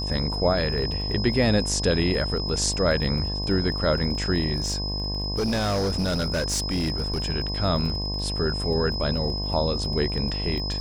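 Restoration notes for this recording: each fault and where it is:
mains buzz 50 Hz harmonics 22 −30 dBFS
surface crackle 28 per second −33 dBFS
whistle 5,100 Hz −30 dBFS
0:04.55–0:07.22: clipping −21 dBFS

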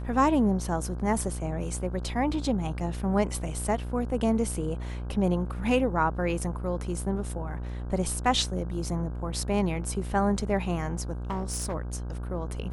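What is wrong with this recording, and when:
mains buzz 60 Hz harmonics 27 −34 dBFS
0:11.30–0:11.75: clipping −26 dBFS

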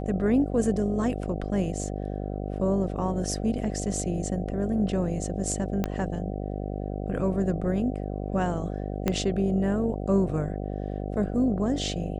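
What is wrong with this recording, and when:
mains buzz 50 Hz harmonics 15 −32 dBFS
0:05.84: click −14 dBFS
0:09.08: click −11 dBFS

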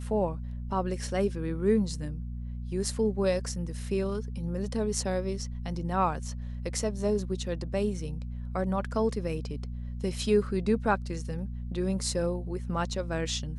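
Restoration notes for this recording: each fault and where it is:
mains hum 60 Hz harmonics 4 −36 dBFS

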